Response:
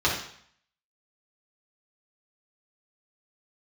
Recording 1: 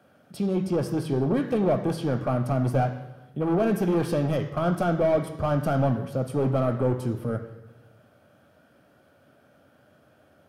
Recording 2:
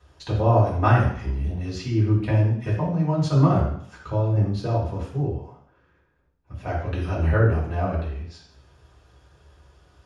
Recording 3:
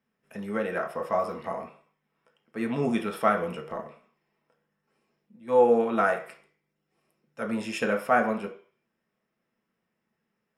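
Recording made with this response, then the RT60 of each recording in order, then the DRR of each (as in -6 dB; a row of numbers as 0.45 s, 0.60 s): 2; 1.1 s, 0.60 s, 0.45 s; 7.5 dB, -6.5 dB, 2.0 dB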